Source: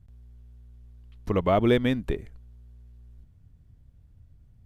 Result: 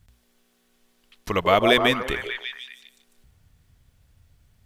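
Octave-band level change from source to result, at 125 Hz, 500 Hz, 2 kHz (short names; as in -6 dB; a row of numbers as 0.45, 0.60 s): -5.0, +3.5, +12.0 dB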